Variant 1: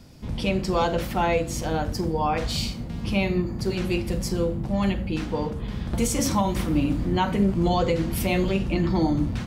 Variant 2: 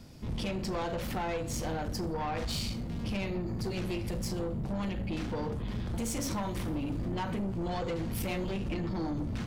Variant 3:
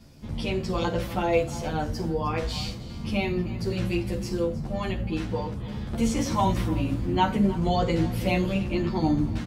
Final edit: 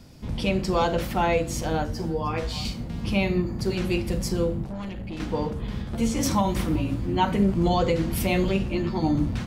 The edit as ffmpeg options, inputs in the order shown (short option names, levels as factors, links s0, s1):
-filter_complex "[2:a]asplit=4[s0][s1][s2][s3];[0:a]asplit=6[s4][s5][s6][s7][s8][s9];[s4]atrim=end=1.852[s10];[s0]atrim=start=1.848:end=2.652[s11];[s5]atrim=start=2.648:end=4.642[s12];[1:a]atrim=start=4.638:end=5.202[s13];[s6]atrim=start=5.198:end=5.822[s14];[s1]atrim=start=5.818:end=6.232[s15];[s7]atrim=start=6.228:end=6.762[s16];[s2]atrim=start=6.758:end=7.252[s17];[s8]atrim=start=7.248:end=8.662[s18];[s3]atrim=start=8.658:end=9.152[s19];[s9]atrim=start=9.148[s20];[s10][s11]acrossfade=d=0.004:c1=hsin:c2=hsin[s21];[s21][s12]acrossfade=d=0.004:c1=hsin:c2=hsin[s22];[s22][s13]acrossfade=d=0.004:c1=hsin:c2=hsin[s23];[s23][s14]acrossfade=d=0.004:c1=hsin:c2=hsin[s24];[s24][s15]acrossfade=d=0.004:c1=hsin:c2=hsin[s25];[s25][s16]acrossfade=d=0.004:c1=hsin:c2=hsin[s26];[s26][s17]acrossfade=d=0.004:c1=hsin:c2=hsin[s27];[s27][s18]acrossfade=d=0.004:c1=hsin:c2=hsin[s28];[s28][s19]acrossfade=d=0.004:c1=hsin:c2=hsin[s29];[s29][s20]acrossfade=d=0.004:c1=hsin:c2=hsin"